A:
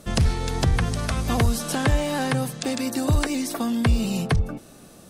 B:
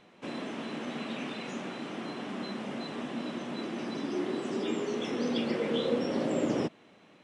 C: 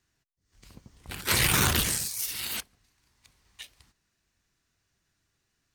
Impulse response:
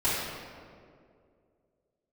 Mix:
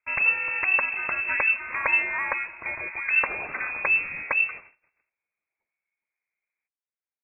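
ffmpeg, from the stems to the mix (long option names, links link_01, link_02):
-filter_complex "[0:a]volume=1.5dB[link_01];[1:a]acompressor=threshold=-49dB:ratio=2,volume=-10.5dB[link_02];[2:a]adelay=2000,volume=-8.5dB,asplit=2[link_03][link_04];[link_04]volume=-10.5dB,aecho=0:1:419|838|1257|1676|2095:1|0.35|0.122|0.0429|0.015[link_05];[link_01][link_02][link_03][link_05]amix=inputs=4:normalize=0,agate=range=-30dB:threshold=-40dB:ratio=16:detection=peak,equalizer=frequency=180:width=0.58:gain=-13,lowpass=frequency=2300:width_type=q:width=0.5098,lowpass=frequency=2300:width_type=q:width=0.6013,lowpass=frequency=2300:width_type=q:width=0.9,lowpass=frequency=2300:width_type=q:width=2.563,afreqshift=-2700"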